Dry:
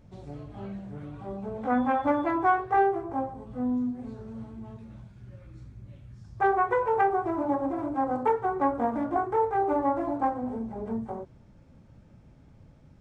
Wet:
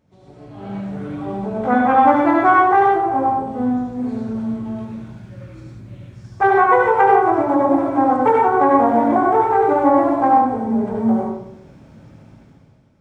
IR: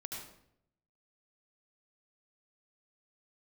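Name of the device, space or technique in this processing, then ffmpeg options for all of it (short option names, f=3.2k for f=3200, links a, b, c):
far laptop microphone: -filter_complex "[1:a]atrim=start_sample=2205[a];[0:a][a]afir=irnorm=-1:irlink=0,highpass=f=200:p=1,dynaudnorm=f=100:g=13:m=14dB,volume=1.5dB"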